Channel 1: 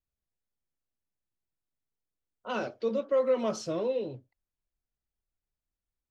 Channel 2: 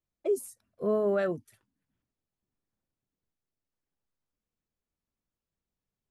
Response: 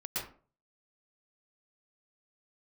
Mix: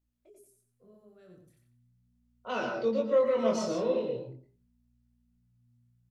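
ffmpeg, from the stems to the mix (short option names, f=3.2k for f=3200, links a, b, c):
-filter_complex "[0:a]volume=0.5dB,asplit=2[a][b];[b]volume=-3.5dB[c];[1:a]agate=range=-33dB:threshold=-56dB:ratio=3:detection=peak,acrossover=split=260|3000[d][e][f];[e]acompressor=threshold=-43dB:ratio=4[g];[d][g][f]amix=inputs=3:normalize=0,aeval=exprs='val(0)+0.00158*(sin(2*PI*60*n/s)+sin(2*PI*2*60*n/s)/2+sin(2*PI*3*60*n/s)/3+sin(2*PI*4*60*n/s)/4+sin(2*PI*5*60*n/s)/5)':c=same,volume=-6dB,afade=t=in:st=1.21:d=0.47:silence=0.251189,asplit=2[h][i];[i]volume=-4.5dB[j];[2:a]atrim=start_sample=2205[k];[c][k]afir=irnorm=-1:irlink=0[l];[j]aecho=0:1:91|182|273|364:1|0.3|0.09|0.027[m];[a][h][l][m]amix=inputs=4:normalize=0,bandreject=f=50:t=h:w=6,bandreject=f=100:t=h:w=6,bandreject=f=150:t=h:w=6,bandreject=f=200:t=h:w=6,bandreject=f=250:t=h:w=6,bandreject=f=300:t=h:w=6,bandreject=f=350:t=h:w=6,bandreject=f=400:t=h:w=6,flanger=delay=20:depth=7.7:speed=0.4"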